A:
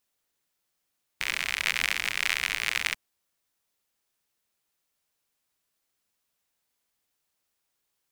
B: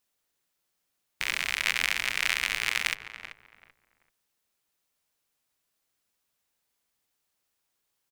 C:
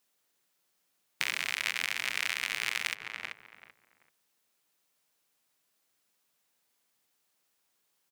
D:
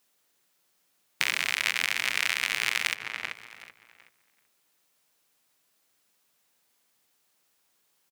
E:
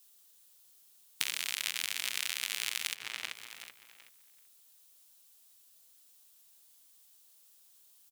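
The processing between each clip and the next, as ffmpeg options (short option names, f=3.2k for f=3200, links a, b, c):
-filter_complex "[0:a]asplit=2[a][b];[b]adelay=385,lowpass=f=1.5k:p=1,volume=-9.5dB,asplit=2[c][d];[d]adelay=385,lowpass=f=1.5k:p=1,volume=0.3,asplit=2[e][f];[f]adelay=385,lowpass=f=1.5k:p=1,volume=0.3[g];[a][c][e][g]amix=inputs=4:normalize=0"
-af "highpass=130,acompressor=threshold=-29dB:ratio=6,volume=3dB"
-af "aecho=1:1:753:0.0668,volume=5dB"
-af "acompressor=threshold=-32dB:ratio=3,highpass=f=110:p=1,aexciter=amount=2.4:drive=7.2:freq=3k,volume=-4dB"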